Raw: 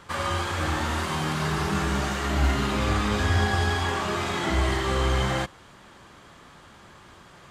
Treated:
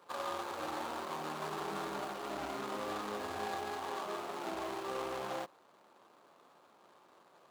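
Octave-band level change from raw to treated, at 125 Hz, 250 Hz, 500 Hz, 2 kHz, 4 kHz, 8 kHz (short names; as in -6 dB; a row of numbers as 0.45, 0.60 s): -29.5, -16.0, -10.0, -17.0, -16.0, -15.0 dB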